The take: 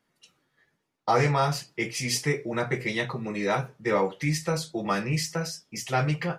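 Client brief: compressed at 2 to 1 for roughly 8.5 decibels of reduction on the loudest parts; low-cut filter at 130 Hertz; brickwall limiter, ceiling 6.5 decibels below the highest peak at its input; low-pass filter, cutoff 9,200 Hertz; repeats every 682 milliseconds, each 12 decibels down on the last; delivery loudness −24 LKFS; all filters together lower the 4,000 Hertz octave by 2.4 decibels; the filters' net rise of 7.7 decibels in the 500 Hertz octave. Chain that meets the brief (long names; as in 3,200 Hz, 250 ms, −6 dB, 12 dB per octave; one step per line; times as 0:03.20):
high-pass filter 130 Hz
low-pass filter 9,200 Hz
parametric band 500 Hz +9 dB
parametric band 4,000 Hz −3 dB
downward compressor 2 to 1, threshold −28 dBFS
brickwall limiter −20.5 dBFS
repeating echo 682 ms, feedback 25%, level −12 dB
level +7.5 dB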